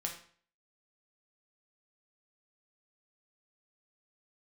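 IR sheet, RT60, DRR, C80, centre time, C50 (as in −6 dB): 0.50 s, 0.5 dB, 11.5 dB, 21 ms, 7.5 dB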